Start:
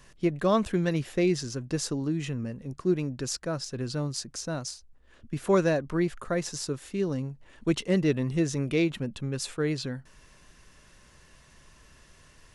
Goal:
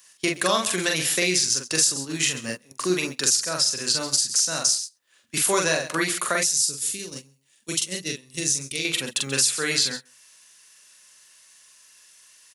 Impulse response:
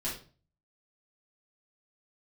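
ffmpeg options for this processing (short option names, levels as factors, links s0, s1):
-filter_complex "[0:a]highpass=82,aderivative,aecho=1:1:133:0.15,acrossover=split=150[s0][s1];[s1]acompressor=threshold=0.00251:ratio=3[s2];[s0][s2]amix=inputs=2:normalize=0,asplit=2[s3][s4];[s4]adelay=44,volume=0.708[s5];[s3][s5]amix=inputs=2:normalize=0,asettb=1/sr,asplit=3[s6][s7][s8];[s6]atrim=end=6.434[s9];[s7]atrim=start=6.43:end=8.85,asetpts=PTS-STARTPTS,afade=t=in:d=0.004:c=qsin,afade=t=out:st=2.416:d=0.004:c=qsin,equalizer=f=1100:w=0.41:g=-13.5[s10];[s8]atrim=start=8.846[s11];[s9][s10]acrossfade=d=0.004:c1=hsin:c2=qsin[s12];[s12][s11]acrossfade=d=0.004:c1=qsin:c2=hsin,agate=range=0.1:threshold=0.00126:ratio=16:detection=peak,alimiter=level_in=59.6:limit=0.891:release=50:level=0:latency=1,volume=0.473"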